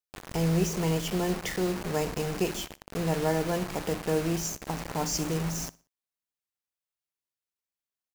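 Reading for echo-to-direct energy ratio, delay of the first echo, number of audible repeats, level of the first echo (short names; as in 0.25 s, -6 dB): -21.5 dB, 60 ms, 2, -22.0 dB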